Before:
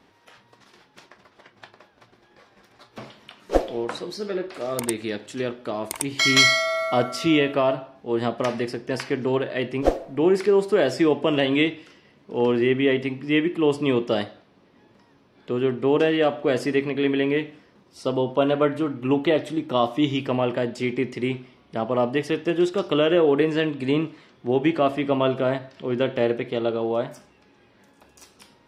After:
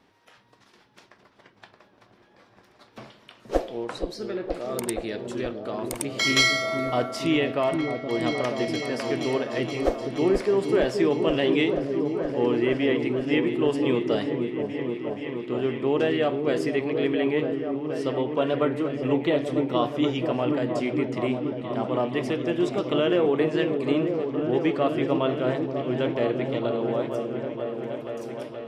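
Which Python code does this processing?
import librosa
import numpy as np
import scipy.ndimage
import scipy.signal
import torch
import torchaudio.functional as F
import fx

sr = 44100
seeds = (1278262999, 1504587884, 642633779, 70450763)

y = fx.echo_opening(x, sr, ms=474, hz=400, octaves=1, feedback_pct=70, wet_db=-3)
y = F.gain(torch.from_numpy(y), -4.0).numpy()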